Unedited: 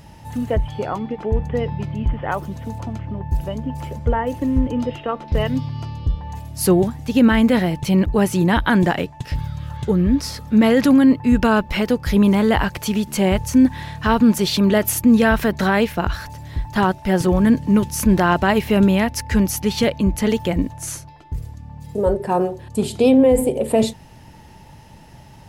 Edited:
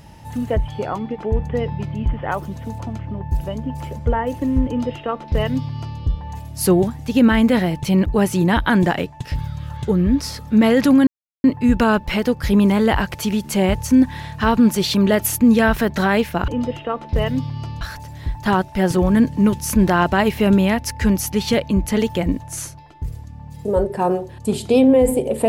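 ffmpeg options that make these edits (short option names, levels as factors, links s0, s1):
-filter_complex "[0:a]asplit=4[s0][s1][s2][s3];[s0]atrim=end=11.07,asetpts=PTS-STARTPTS,afade=t=out:st=11.066:d=0.004:c=hsin,apad=pad_dur=0.37[s4];[s1]atrim=start=11.07:end=16.112,asetpts=PTS-STARTPTS,afade=t=in:d=0.004:c=hsin[s5];[s2]atrim=start=4.668:end=6.002[s6];[s3]atrim=start=16.108[s7];[s4][s5]concat=n=2:v=0:a=1[s8];[s8][s6]acrossfade=d=0.004:c1=hsin:c2=hsin[s9];[s9][s7]acrossfade=d=0.004:c1=hsin:c2=hsin"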